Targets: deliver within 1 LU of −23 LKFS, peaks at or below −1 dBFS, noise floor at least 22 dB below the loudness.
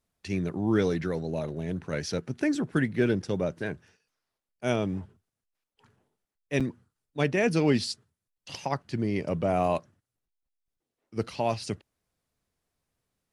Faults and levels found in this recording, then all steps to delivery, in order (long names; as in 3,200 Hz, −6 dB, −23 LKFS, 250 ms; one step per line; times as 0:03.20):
number of dropouts 1; longest dropout 6.3 ms; integrated loudness −29.5 LKFS; sample peak −11.5 dBFS; target loudness −23.0 LKFS
→ repair the gap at 0:06.60, 6.3 ms
level +6.5 dB